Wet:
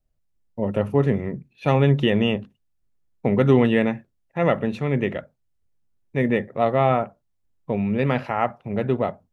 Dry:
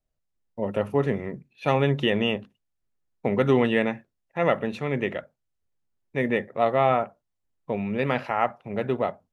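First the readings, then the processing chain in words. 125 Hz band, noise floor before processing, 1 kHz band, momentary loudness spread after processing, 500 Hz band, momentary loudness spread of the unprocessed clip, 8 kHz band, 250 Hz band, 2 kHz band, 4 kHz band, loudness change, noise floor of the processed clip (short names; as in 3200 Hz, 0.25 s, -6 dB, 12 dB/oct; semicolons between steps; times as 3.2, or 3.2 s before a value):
+7.0 dB, -79 dBFS, +1.0 dB, 12 LU, +2.5 dB, 12 LU, n/a, +5.0 dB, 0.0 dB, 0.0 dB, +3.5 dB, -71 dBFS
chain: low shelf 280 Hz +9 dB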